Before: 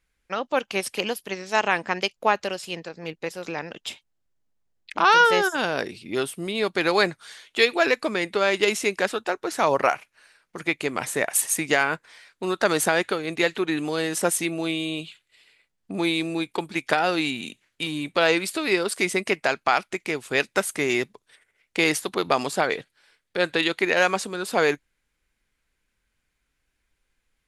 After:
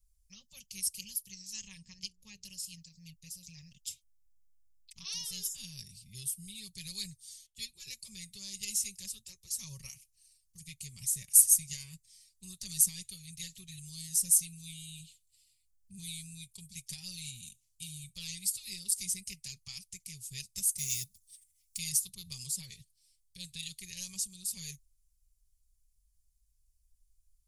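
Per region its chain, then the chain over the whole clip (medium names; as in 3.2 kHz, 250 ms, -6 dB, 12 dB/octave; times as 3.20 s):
1.66–2.45 s: hum notches 60/120/180/240/300/360/420/480 Hz + upward compressor, threshold -38 dBFS + distance through air 55 m
7.46–7.87 s: tilt shelf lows +4 dB, about 640 Hz + upward expansion, over -38 dBFS
20.78–21.78 s: block-companded coder 7-bit + treble shelf 3.2 kHz +9 dB
whole clip: elliptic band-stop 100–4500 Hz, stop band 50 dB; peaking EQ 4 kHz -14 dB 1.1 oct; comb 5.3 ms; trim +4 dB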